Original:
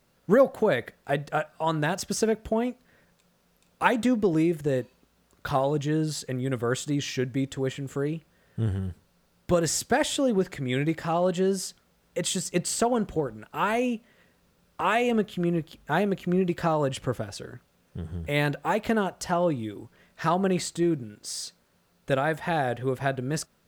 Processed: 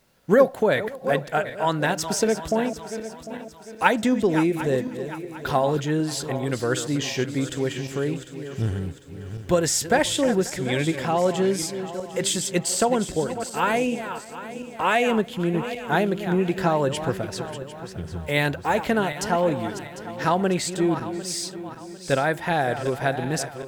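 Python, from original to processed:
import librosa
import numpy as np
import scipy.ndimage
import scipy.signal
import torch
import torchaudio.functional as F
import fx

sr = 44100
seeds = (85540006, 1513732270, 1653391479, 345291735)

p1 = fx.reverse_delay_fb(x, sr, ms=375, feedback_pct=61, wet_db=-10.5)
p2 = fx.low_shelf(p1, sr, hz=460.0, db=-3.5)
p3 = fx.notch(p2, sr, hz=1200.0, q=11.0)
p4 = p3 + fx.echo_single(p3, sr, ms=535, db=-22.5, dry=0)
y = F.gain(torch.from_numpy(p4), 4.5).numpy()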